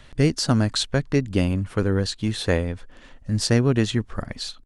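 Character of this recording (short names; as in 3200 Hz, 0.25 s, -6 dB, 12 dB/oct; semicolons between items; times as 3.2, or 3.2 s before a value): noise floor -48 dBFS; spectral tilt -5.5 dB/oct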